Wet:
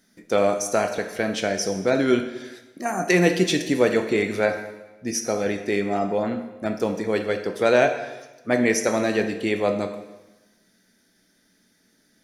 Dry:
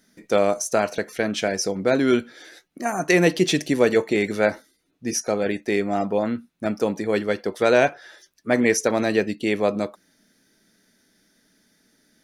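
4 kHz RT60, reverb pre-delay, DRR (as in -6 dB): 1.0 s, 5 ms, 6.0 dB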